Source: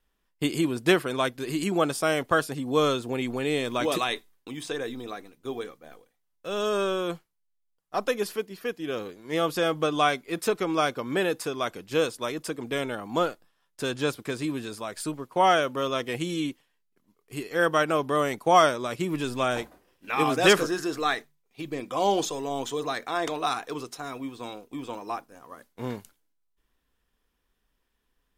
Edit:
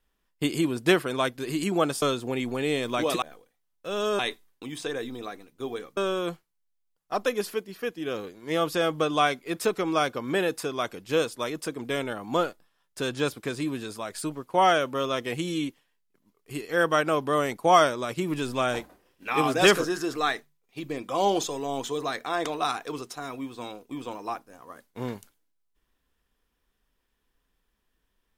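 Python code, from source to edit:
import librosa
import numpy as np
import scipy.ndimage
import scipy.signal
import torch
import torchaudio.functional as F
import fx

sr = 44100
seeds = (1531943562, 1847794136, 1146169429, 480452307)

y = fx.edit(x, sr, fx.cut(start_s=2.02, length_s=0.82),
    fx.move(start_s=5.82, length_s=0.97, to_s=4.04), tone=tone)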